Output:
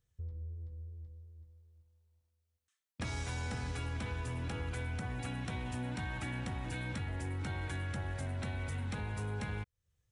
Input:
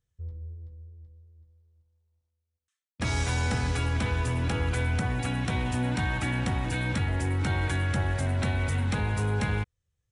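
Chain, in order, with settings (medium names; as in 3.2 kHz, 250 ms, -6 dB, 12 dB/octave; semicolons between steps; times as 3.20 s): compression 2.5:1, threshold -43 dBFS, peak gain reduction 13 dB; trim +1 dB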